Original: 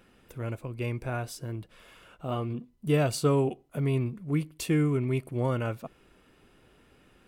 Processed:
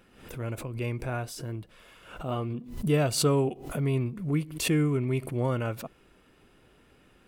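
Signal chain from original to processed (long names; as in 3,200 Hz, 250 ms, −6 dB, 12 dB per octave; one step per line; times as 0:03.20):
background raised ahead of every attack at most 92 dB per second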